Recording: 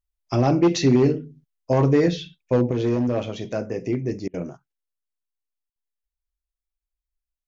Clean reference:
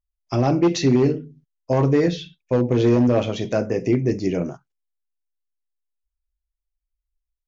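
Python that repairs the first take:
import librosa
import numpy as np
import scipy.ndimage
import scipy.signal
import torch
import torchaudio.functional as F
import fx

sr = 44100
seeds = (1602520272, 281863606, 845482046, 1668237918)

y = fx.fix_interpolate(x, sr, at_s=(4.28, 5.7), length_ms=57.0)
y = fx.fix_level(y, sr, at_s=2.71, step_db=5.5)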